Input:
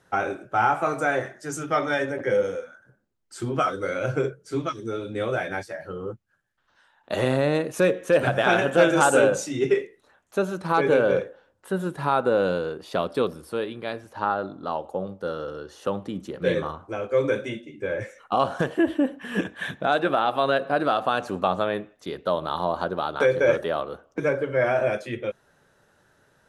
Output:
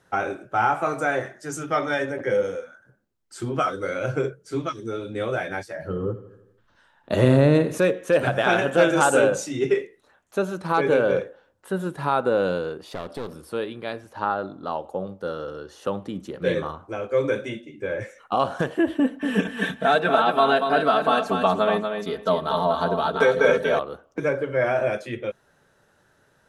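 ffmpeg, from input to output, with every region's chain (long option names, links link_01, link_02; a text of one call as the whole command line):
ffmpeg -i in.wav -filter_complex "[0:a]asettb=1/sr,asplit=3[link_01][link_02][link_03];[link_01]atrim=end=5.764[link_04];[link_02]atrim=start=5.76:end=7.78,asetpts=PTS-STARTPTS,afade=type=in:duration=0.004:curve=qsin,afade=type=out:start_time=2.016:duration=0.004:curve=qsin,lowshelf=frequency=390:gain=11,bandreject=frequency=770:width=14,aecho=1:1:81|162|243|324|405|486:0.178|0.101|0.0578|0.0329|0.0188|0.0107,atrim=end_sample=89082[link_05];[link_03]atrim=start=7.776[link_06];[link_04][link_05]acrossfade=duration=0.004:curve1=hsin:curve2=qsin[link_07];[link_07][link_06]acrossfade=duration=0.004:curve1=qsin:curve2=hsin,asettb=1/sr,asplit=3[link_08][link_09][link_10];[link_08]atrim=end=12.874[link_11];[link_09]atrim=start=12.87:end=13.34,asetpts=PTS-STARTPTS,afade=type=in:duration=0.004:curve=qsin,afade=type=out:start_time=0.466:duration=0.004:curve=qsin,acompressor=threshold=-28dB:ratio=2.5:attack=3.2:release=140:knee=1:detection=peak,aeval=exprs='clip(val(0),-1,0.0158)':channel_layout=same[link_12];[link_10]atrim=start=13.336[link_13];[link_11][link_12]acrossfade=duration=0.004:curve1=hsin:curve2=qsin[link_14];[link_14][link_13]acrossfade=duration=0.004:curve1=qsin:curve2=hsin,asettb=1/sr,asplit=3[link_15][link_16][link_17];[link_15]atrim=end=18.994[link_18];[link_16]atrim=start=18.99:end=23.79,asetpts=PTS-STARTPTS,afade=type=in:duration=0.004:curve=qsin,afade=type=out:start_time=4.796:duration=0.004:curve=qsin,aecho=1:1:4.5:0.96,atrim=end_sample=211680,aecho=1:1:237|474|711:0.501|0.0852|0.0145,atrim=end_sample=211680[link_19];[link_17]atrim=start=23.786[link_20];[link_18][link_19]acrossfade=duration=0.004:curve1=hsin:curve2=qsin[link_21];[link_21][link_20]acrossfade=duration=0.004:curve1=qsin:curve2=hsin" out.wav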